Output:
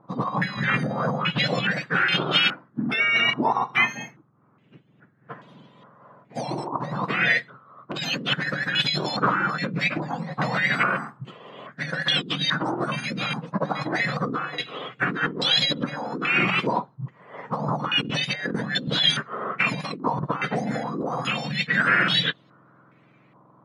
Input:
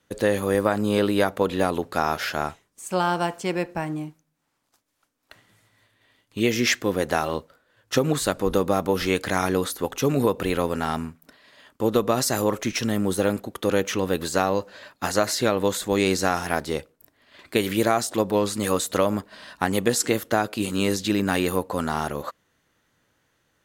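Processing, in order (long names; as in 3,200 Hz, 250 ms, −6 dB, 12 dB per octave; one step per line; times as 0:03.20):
frequency axis turned over on the octave scale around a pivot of 1,400 Hz
0:00.57–0:01.71: spectral tilt −2.5 dB per octave
compressor whose output falls as the input rises −31 dBFS, ratio −1
low-pass on a step sequencer 2.4 Hz 1,000–3,400 Hz
level +4 dB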